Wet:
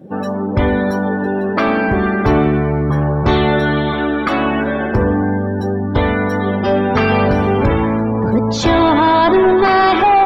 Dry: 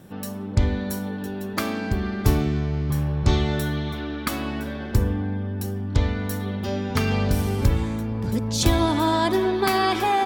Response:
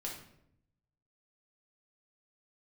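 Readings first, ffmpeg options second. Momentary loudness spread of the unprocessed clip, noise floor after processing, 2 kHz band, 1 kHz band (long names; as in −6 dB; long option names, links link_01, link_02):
8 LU, −20 dBFS, +12.0 dB, +12.0 dB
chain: -filter_complex "[0:a]asplit=2[link_01][link_02];[link_02]highpass=frequency=720:poles=1,volume=25dB,asoftclip=type=tanh:threshold=-5dB[link_03];[link_01][link_03]amix=inputs=2:normalize=0,lowpass=frequency=1100:poles=1,volume=-6dB,afftdn=noise_reduction=23:noise_floor=-31,volume=3.5dB"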